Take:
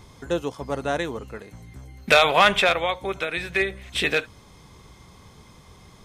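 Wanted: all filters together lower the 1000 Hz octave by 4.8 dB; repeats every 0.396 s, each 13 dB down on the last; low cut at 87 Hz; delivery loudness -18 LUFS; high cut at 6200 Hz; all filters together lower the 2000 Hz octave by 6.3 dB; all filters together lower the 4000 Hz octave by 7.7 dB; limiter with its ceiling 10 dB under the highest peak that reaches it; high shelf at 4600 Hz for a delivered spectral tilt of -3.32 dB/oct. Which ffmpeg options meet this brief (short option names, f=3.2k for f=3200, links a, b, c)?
-af "highpass=87,lowpass=6.2k,equalizer=f=1k:t=o:g=-5,equalizer=f=2k:t=o:g=-5,equalizer=f=4k:t=o:g=-9,highshelf=f=4.6k:g=4.5,alimiter=limit=-18dB:level=0:latency=1,aecho=1:1:396|792|1188:0.224|0.0493|0.0108,volume=12.5dB"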